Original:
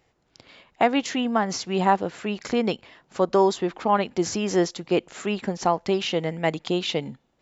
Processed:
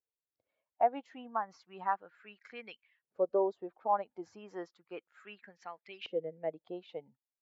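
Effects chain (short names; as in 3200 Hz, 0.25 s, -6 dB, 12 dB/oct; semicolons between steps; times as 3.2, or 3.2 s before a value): per-bin expansion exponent 1.5; 5.61–6.53 bell 930 Hz -5 dB 0.87 oct; LFO band-pass saw up 0.33 Hz 450–2400 Hz; high shelf 4800 Hz -8.5 dB; gain -4 dB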